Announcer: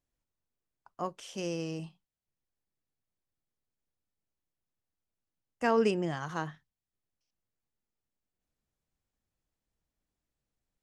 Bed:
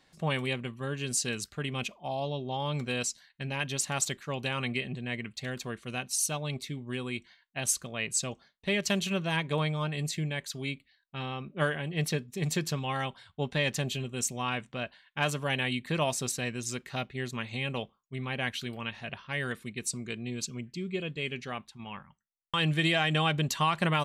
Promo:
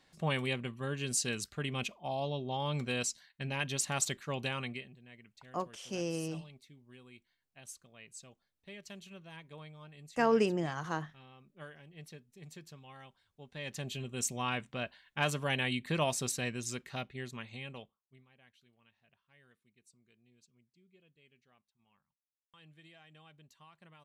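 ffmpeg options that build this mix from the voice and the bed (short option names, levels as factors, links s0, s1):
-filter_complex "[0:a]adelay=4550,volume=0.891[s0];[1:a]volume=5.96,afade=t=out:st=4.42:d=0.51:silence=0.125893,afade=t=in:st=13.48:d=0.82:silence=0.125893,afade=t=out:st=16.45:d=1.81:silence=0.0334965[s1];[s0][s1]amix=inputs=2:normalize=0"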